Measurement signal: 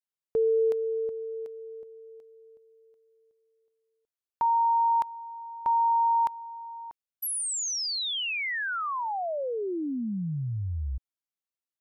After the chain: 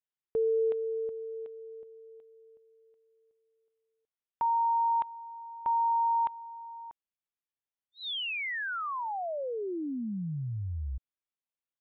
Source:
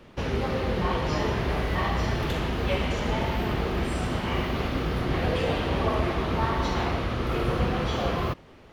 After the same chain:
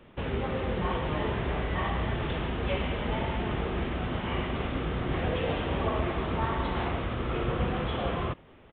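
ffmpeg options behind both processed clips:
ffmpeg -i in.wav -af "aresample=8000,aresample=44100,volume=-3.5dB" out.wav

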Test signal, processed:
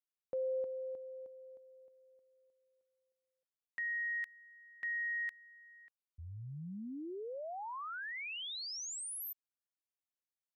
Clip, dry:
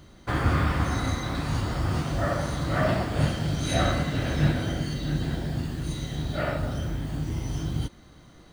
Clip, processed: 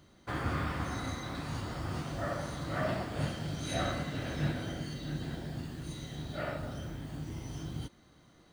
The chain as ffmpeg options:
ffmpeg -i in.wav -af "lowshelf=frequency=64:gain=-11,volume=-8dB" out.wav

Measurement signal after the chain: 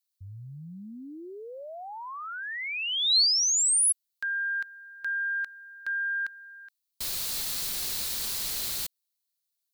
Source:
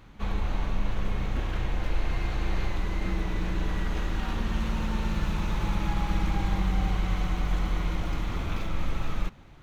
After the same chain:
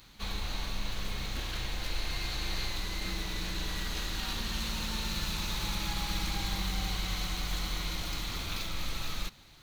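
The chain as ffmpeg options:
ffmpeg -i in.wav -af "equalizer=frequency=4200:width=2.9:gain=9,crystalizer=i=7:c=0,aeval=exprs='0.398*(cos(1*acos(clip(val(0)/0.398,-1,1)))-cos(1*PI/2))+0.00501*(cos(2*acos(clip(val(0)/0.398,-1,1)))-cos(2*PI/2))':channel_layout=same,volume=-8.5dB" out.wav

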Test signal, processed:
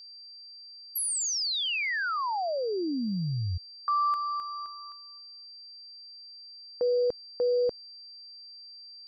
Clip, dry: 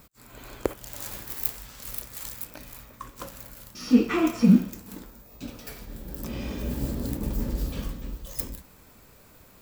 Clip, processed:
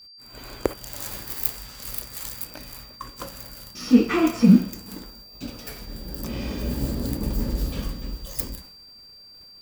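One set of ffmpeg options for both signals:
ffmpeg -i in.wav -af "agate=range=-33dB:threshold=-45dB:ratio=3:detection=peak,aeval=exprs='val(0)+0.00398*sin(2*PI*4700*n/s)':channel_layout=same,volume=3dB" out.wav

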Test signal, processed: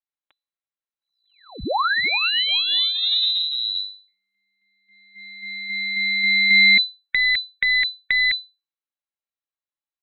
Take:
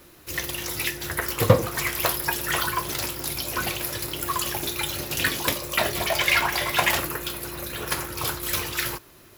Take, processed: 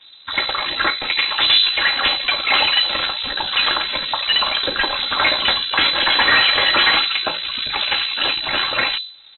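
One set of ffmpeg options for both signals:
ffmpeg -i in.wav -filter_complex "[0:a]afftdn=noise_reduction=18:noise_floor=-41,bandreject=frequency=50:width_type=h:width=6,bandreject=frequency=100:width_type=h:width=6,bandreject=frequency=150:width_type=h:width=6,bandreject=frequency=200:width_type=h:width=6,bandreject=frequency=250:width_type=h:width=6,bandreject=frequency=300:width_type=h:width=6,bandreject=frequency=350:width_type=h:width=6,bandreject=frequency=400:width_type=h:width=6,aecho=1:1:3.8:0.48,asplit=2[link_01][link_02];[link_02]acompressor=threshold=-40dB:ratio=6,volume=3dB[link_03];[link_01][link_03]amix=inputs=2:normalize=0,apsyclip=17.5dB,acrossover=split=2700[link_04][link_05];[link_04]aeval=exprs='max(val(0),0)':channel_layout=same[link_06];[link_06][link_05]amix=inputs=2:normalize=0,lowpass=frequency=3400:width_type=q:width=0.5098,lowpass=frequency=3400:width_type=q:width=0.6013,lowpass=frequency=3400:width_type=q:width=0.9,lowpass=frequency=3400:width_type=q:width=2.563,afreqshift=-4000,volume=-5dB" out.wav

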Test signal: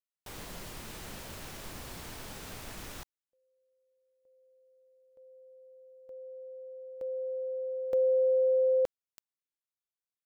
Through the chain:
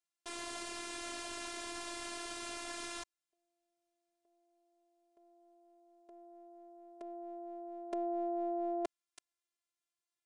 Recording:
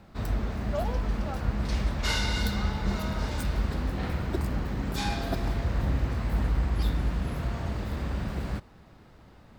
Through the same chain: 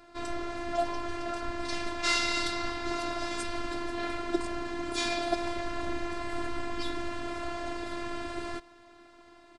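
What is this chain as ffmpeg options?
ffmpeg -i in.wav -af "highpass=frequency=240:poles=1,aresample=22050,aresample=44100,afftfilt=real='hypot(re,im)*cos(PI*b)':imag='0':win_size=512:overlap=0.75,volume=6.5dB" out.wav

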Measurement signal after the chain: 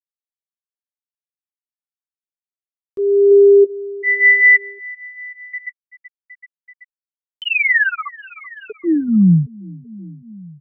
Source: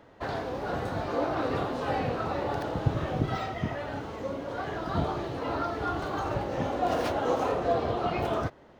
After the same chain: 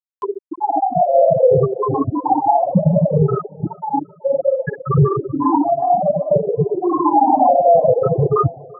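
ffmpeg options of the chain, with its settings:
ffmpeg -i in.wav -filter_complex "[0:a]afftfilt=real='re*pow(10,22/40*sin(2*PI*(0.59*log(max(b,1)*sr/1024/100)/log(2)-(-0.61)*(pts-256)/sr)))':imag='im*pow(10,22/40*sin(2*PI*(0.59*log(max(b,1)*sr/1024/100)/log(2)-(-0.61)*(pts-256)/sr)))':win_size=1024:overlap=0.75,adynamicequalizer=threshold=0.0112:dfrequency=230:dqfactor=2.1:tfrequency=230:tqfactor=2.1:attack=5:release=100:ratio=0.375:range=2:mode=cutabove:tftype=bell,bandreject=frequency=370:width=12,flanger=delay=4.8:depth=3:regen=12:speed=0.31:shape=sinusoidal,highpass=120,equalizer=frequency=170:width_type=q:width=4:gain=4,equalizer=frequency=1400:width_type=q:width=4:gain=-6,equalizer=frequency=2200:width_type=q:width=4:gain=-4,equalizer=frequency=3200:width_type=q:width=4:gain=-5,lowpass=frequency=8600:width=0.5412,lowpass=frequency=8600:width=1.3066,afftfilt=real='re*gte(hypot(re,im),0.158)':imag='im*gte(hypot(re,im),0.158)':win_size=1024:overlap=0.75,asplit=2[link_01][link_02];[link_02]aecho=0:1:382|764|1146:0.0631|0.0334|0.0177[link_03];[link_01][link_03]amix=inputs=2:normalize=0,acompressor=mode=upward:threshold=-43dB:ratio=2.5,alimiter=level_in=20.5dB:limit=-1dB:release=50:level=0:latency=1,volume=-3.5dB" out.wav

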